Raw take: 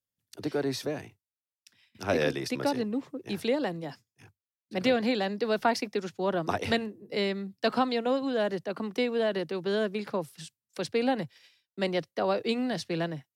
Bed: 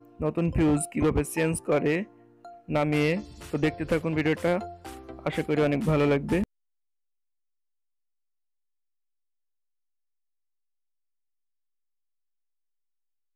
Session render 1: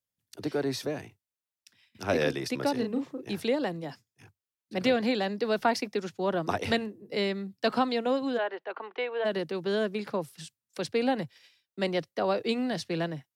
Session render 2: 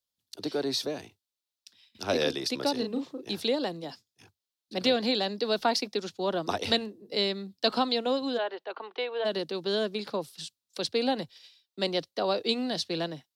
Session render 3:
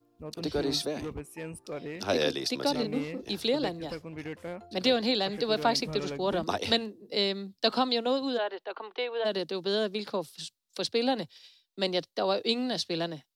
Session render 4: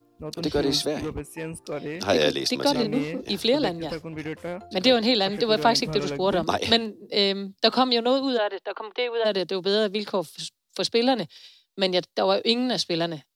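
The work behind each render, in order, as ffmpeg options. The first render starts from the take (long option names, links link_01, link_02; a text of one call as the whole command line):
ffmpeg -i in.wav -filter_complex "[0:a]asettb=1/sr,asplit=3[link_01][link_02][link_03];[link_01]atrim=end=2.754[link_04];[link_02]atrim=start=2.75:end=3.29,asetpts=PTS-STARTPTS,afade=type=in:duration=0.004:curve=qsin,afade=type=out:start_time=0.536:duration=0.004:curve=qsin,asplit=2[link_05][link_06];[link_06]adelay=36,volume=-5.5dB[link_07];[link_05][link_07]amix=inputs=2:normalize=0,atrim=end_sample=23814[link_08];[link_03]atrim=start=3.286[link_09];[link_04][link_08]acrossfade=duration=0.004:curve1=hsin:curve2=qsin[link_10];[link_10][link_09]acrossfade=duration=0.004:curve1=qsin:curve2=hsin,asplit=3[link_11][link_12][link_13];[link_11]afade=type=out:start_time=8.37:duration=0.02[link_14];[link_12]highpass=frequency=430:width=0.5412,highpass=frequency=430:width=1.3066,equalizer=frequency=570:width_type=q:width=4:gain=-5,equalizer=frequency=890:width_type=q:width=4:gain=5,equalizer=frequency=1500:width_type=q:width=4:gain=3,lowpass=frequency=3100:width=0.5412,lowpass=frequency=3100:width=1.3066,afade=type=in:start_time=8.37:duration=0.02,afade=type=out:start_time=9.24:duration=0.02[link_15];[link_13]afade=type=in:start_time=9.24:duration=0.02[link_16];[link_14][link_15][link_16]amix=inputs=3:normalize=0" out.wav
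ffmpeg -i in.wav -af "equalizer=frequency=125:width_type=o:width=1:gain=-8,equalizer=frequency=2000:width_type=o:width=1:gain=-6,equalizer=frequency=4000:width_type=o:width=1:gain=10" out.wav
ffmpeg -i in.wav -i bed.wav -filter_complex "[1:a]volume=-14dB[link_01];[0:a][link_01]amix=inputs=2:normalize=0" out.wav
ffmpeg -i in.wav -af "volume=6dB" out.wav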